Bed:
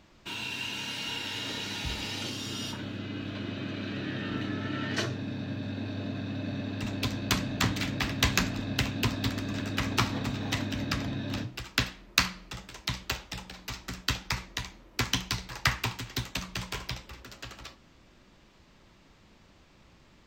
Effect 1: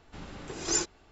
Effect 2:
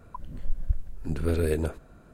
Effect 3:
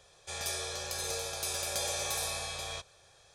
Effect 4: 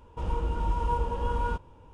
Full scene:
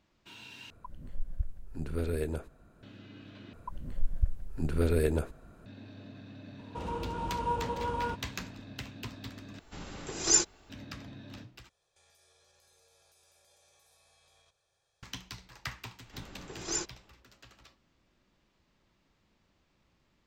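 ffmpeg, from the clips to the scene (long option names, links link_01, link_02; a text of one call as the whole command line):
ffmpeg -i bed.wav -i cue0.wav -i cue1.wav -i cue2.wav -i cue3.wav -filter_complex "[2:a]asplit=2[link_01][link_02];[1:a]asplit=2[link_03][link_04];[0:a]volume=-13.5dB[link_05];[4:a]highpass=110[link_06];[link_03]highshelf=frequency=6100:gain=10[link_07];[3:a]acompressor=threshold=-42dB:ratio=20:attack=0.22:release=91:knee=1:detection=peak[link_08];[link_05]asplit=5[link_09][link_10][link_11][link_12][link_13];[link_09]atrim=end=0.704[link_14];[link_01]atrim=end=2.13,asetpts=PTS-STARTPTS,volume=-7dB[link_15];[link_10]atrim=start=2.826:end=3.534[link_16];[link_02]atrim=end=2.13,asetpts=PTS-STARTPTS,volume=-1.5dB[link_17];[link_11]atrim=start=5.656:end=9.594[link_18];[link_07]atrim=end=1.11,asetpts=PTS-STARTPTS,volume=-0.5dB[link_19];[link_12]atrim=start=10.696:end=11.694[link_20];[link_08]atrim=end=3.34,asetpts=PTS-STARTPTS,volume=-17.5dB[link_21];[link_13]atrim=start=15.026[link_22];[link_06]atrim=end=1.93,asetpts=PTS-STARTPTS,volume=-1.5dB,afade=type=in:duration=0.004:curve=hsin,afade=type=out:start_time=1.926:duration=0.004:curve=hsin,adelay=290178S[link_23];[link_04]atrim=end=1.11,asetpts=PTS-STARTPTS,volume=-5.5dB,afade=type=in:duration=0.004:curve=hsin,afade=type=out:start_time=1.106:duration=0.004:curve=hsin,adelay=16000[link_24];[link_14][link_15]acrossfade=duration=0.004:curve1=hsin:curve2=hsin[link_25];[link_25][link_16]acrossfade=duration=0.004:curve1=hsin:curve2=hsin[link_26];[link_26][link_17]acrossfade=duration=0.004:curve1=hsin:curve2=hsin[link_27];[link_27][link_18]acrossfade=duration=0.004:curve1=hsin:curve2=hsin[link_28];[link_28][link_19]acrossfade=duration=0.004:curve1=hsin:curve2=hsin[link_29];[link_29][link_20]acrossfade=duration=0.004:curve1=hsin:curve2=hsin[link_30];[link_30][link_21]acrossfade=duration=0.004:curve1=hsin:curve2=hsin[link_31];[link_31][link_22]acrossfade=duration=0.004:curve1=hsin:curve2=hsin[link_32];[link_32][link_23][link_24]amix=inputs=3:normalize=0" out.wav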